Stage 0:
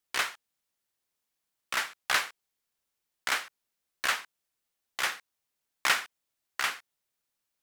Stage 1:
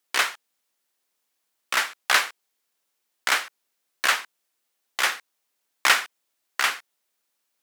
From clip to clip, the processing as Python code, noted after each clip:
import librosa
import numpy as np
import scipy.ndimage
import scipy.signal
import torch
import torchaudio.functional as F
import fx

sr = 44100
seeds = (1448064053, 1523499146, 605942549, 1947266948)

y = scipy.signal.sosfilt(scipy.signal.butter(2, 240.0, 'highpass', fs=sr, output='sos'), x)
y = y * librosa.db_to_amplitude(7.0)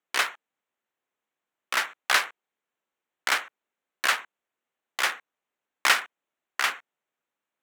y = fx.wiener(x, sr, points=9)
y = y * librosa.db_to_amplitude(-2.0)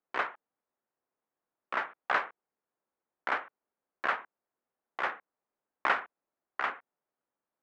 y = scipy.signal.sosfilt(scipy.signal.butter(2, 1200.0, 'lowpass', fs=sr, output='sos'), x)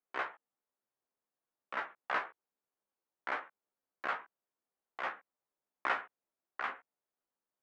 y = fx.doubler(x, sr, ms=15.0, db=-3.5)
y = y * librosa.db_to_amplitude(-7.0)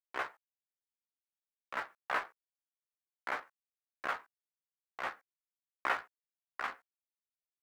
y = fx.law_mismatch(x, sr, coded='A')
y = y * librosa.db_to_amplitude(1.5)